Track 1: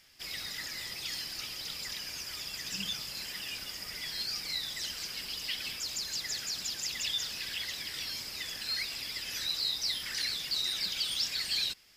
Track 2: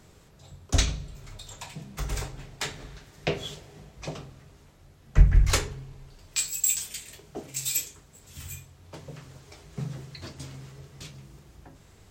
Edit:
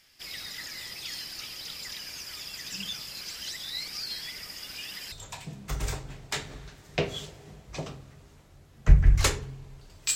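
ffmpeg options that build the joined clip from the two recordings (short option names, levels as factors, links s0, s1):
-filter_complex "[0:a]apad=whole_dur=10.15,atrim=end=10.15,asplit=2[s0][s1];[s0]atrim=end=3.212[s2];[s1]atrim=start=3.208:end=5.122,asetpts=PTS-STARTPTS,areverse[s3];[1:a]atrim=start=1.408:end=6.44[s4];[s2][s3]acrossfade=d=0.004:c1=hsin:c2=hsin[s5];[s5][s4]acrossfade=d=0.004:c1=hsin:c2=hsin"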